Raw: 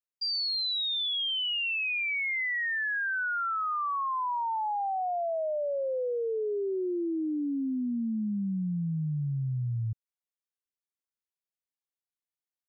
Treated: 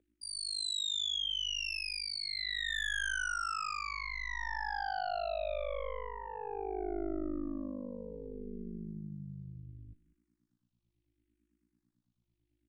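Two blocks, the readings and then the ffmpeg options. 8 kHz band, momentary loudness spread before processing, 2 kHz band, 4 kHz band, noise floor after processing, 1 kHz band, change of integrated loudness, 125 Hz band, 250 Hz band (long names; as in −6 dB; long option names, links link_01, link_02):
can't be measured, 4 LU, −6.5 dB, −4.5 dB, −83 dBFS, −8.0 dB, −6.5 dB, −15.5 dB, −10.5 dB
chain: -filter_complex "[0:a]aeval=exprs='val(0)+0.000794*(sin(2*PI*60*n/s)+sin(2*PI*2*60*n/s)/2+sin(2*PI*3*60*n/s)/3+sin(2*PI*4*60*n/s)/4+sin(2*PI*5*60*n/s)/5)':channel_layout=same,tremolo=f=51:d=1,acrossover=split=280 2800:gain=0.141 1 0.0794[link_01][link_02][link_03];[link_01][link_02][link_03]amix=inputs=3:normalize=0,aeval=exprs='0.0447*(cos(1*acos(clip(val(0)/0.0447,-1,1)))-cos(1*PI/2))+0.02*(cos(2*acos(clip(val(0)/0.0447,-1,1)))-cos(2*PI/2))+0.00316*(cos(6*acos(clip(val(0)/0.0447,-1,1)))-cos(6*PI/2))':channel_layout=same,equalizer=frequency=500:width_type=o:width=0.77:gain=3.5,asplit=2[link_04][link_05];[link_05]adelay=198.3,volume=-20dB,highshelf=frequency=4000:gain=-4.46[link_06];[link_04][link_06]amix=inputs=2:normalize=0,acontrast=53,crystalizer=i=10:c=0,areverse,acompressor=threshold=-28dB:ratio=6,areverse,aresample=22050,aresample=44100,asplit=2[link_07][link_08];[link_08]afreqshift=-0.71[link_09];[link_07][link_09]amix=inputs=2:normalize=1,volume=-2dB"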